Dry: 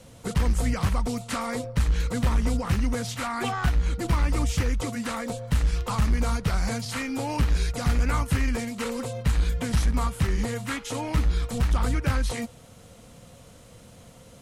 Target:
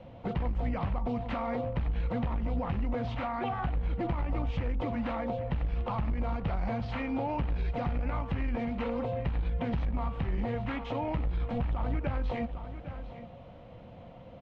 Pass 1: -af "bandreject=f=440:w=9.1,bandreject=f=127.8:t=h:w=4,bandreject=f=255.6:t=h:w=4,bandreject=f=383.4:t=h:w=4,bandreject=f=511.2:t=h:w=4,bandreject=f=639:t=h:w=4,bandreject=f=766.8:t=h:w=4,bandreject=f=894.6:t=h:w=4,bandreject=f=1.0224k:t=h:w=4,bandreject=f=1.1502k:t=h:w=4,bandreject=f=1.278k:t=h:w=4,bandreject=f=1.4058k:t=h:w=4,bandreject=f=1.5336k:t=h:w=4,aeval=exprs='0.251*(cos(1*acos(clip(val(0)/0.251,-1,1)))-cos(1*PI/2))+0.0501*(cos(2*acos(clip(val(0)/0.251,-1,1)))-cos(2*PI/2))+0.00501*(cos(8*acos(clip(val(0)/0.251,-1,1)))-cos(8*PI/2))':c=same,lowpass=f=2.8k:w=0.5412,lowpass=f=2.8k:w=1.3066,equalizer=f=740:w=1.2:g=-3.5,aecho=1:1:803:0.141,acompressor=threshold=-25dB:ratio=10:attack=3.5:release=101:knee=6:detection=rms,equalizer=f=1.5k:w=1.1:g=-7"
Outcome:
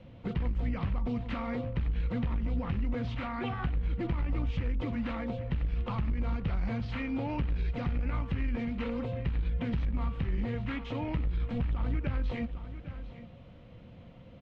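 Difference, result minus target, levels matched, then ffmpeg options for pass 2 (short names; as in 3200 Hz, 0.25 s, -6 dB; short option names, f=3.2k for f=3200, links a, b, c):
1000 Hz band -6.0 dB
-af "bandreject=f=440:w=9.1,bandreject=f=127.8:t=h:w=4,bandreject=f=255.6:t=h:w=4,bandreject=f=383.4:t=h:w=4,bandreject=f=511.2:t=h:w=4,bandreject=f=639:t=h:w=4,bandreject=f=766.8:t=h:w=4,bandreject=f=894.6:t=h:w=4,bandreject=f=1.0224k:t=h:w=4,bandreject=f=1.1502k:t=h:w=4,bandreject=f=1.278k:t=h:w=4,bandreject=f=1.4058k:t=h:w=4,bandreject=f=1.5336k:t=h:w=4,aeval=exprs='0.251*(cos(1*acos(clip(val(0)/0.251,-1,1)))-cos(1*PI/2))+0.0501*(cos(2*acos(clip(val(0)/0.251,-1,1)))-cos(2*PI/2))+0.00501*(cos(8*acos(clip(val(0)/0.251,-1,1)))-cos(8*PI/2))':c=same,lowpass=f=2.8k:w=0.5412,lowpass=f=2.8k:w=1.3066,equalizer=f=740:w=1.2:g=7.5,aecho=1:1:803:0.141,acompressor=threshold=-25dB:ratio=10:attack=3.5:release=101:knee=6:detection=rms,equalizer=f=1.5k:w=1.1:g=-7"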